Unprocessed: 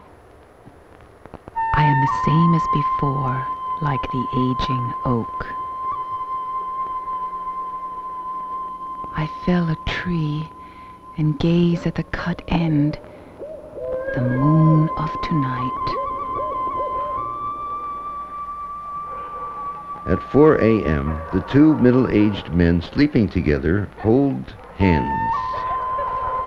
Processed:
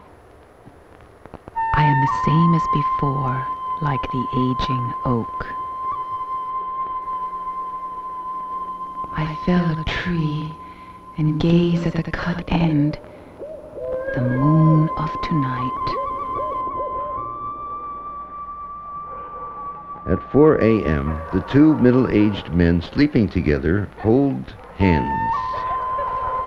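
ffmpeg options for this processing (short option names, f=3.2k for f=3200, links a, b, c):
-filter_complex "[0:a]asettb=1/sr,asplit=3[a][b][c];[a]atrim=end=6.504[d];[b]atrim=start=6.5:end=7.02,asetpts=PTS-STARTPTS,afade=t=in:d=0.004:c=qsin,afade=t=out:st=0.516:d=0.004:c=qsin,lowpass=f=4.4k:w=0.5412,lowpass=f=4.4k:w=1.3066[e];[c]atrim=start=7.016[f];[d][e]acrossfade=d=0.004:c1=hsin:c2=qsin[g];[g][f]acrossfade=d=0.004:c1=qsin:c2=hsin,asettb=1/sr,asplit=3[h][i][j];[h]atrim=end=8.464[k];[i]atrim=start=8.46:end=12.73,asetpts=PTS-STARTPTS,afade=t=in:d=0.004:c=qsin,afade=t=out:st=4.266:d=0.004:c=qsin,aecho=1:1:89:0.473,atrim=end_sample=188307[l];[j]atrim=start=12.726[m];[k][l]acrossfade=d=0.004:c1=hsin:c2=qsin[n];[n][m]acrossfade=d=0.004:c1=qsin:c2=hsin,asettb=1/sr,asplit=3[o][p][q];[o]atrim=end=16.614[r];[p]atrim=start=16.61:end=20.61,asetpts=PTS-STARTPTS,afade=t=in:d=0.004:c=qsin,afade=t=out:st=3.996:d=0.004:c=qsin,lowpass=f=1.4k:p=1[s];[q]atrim=start=20.606[t];[r][s]acrossfade=d=0.004:c1=hsin:c2=qsin[u];[u][t]acrossfade=d=0.004:c1=qsin:c2=hsin"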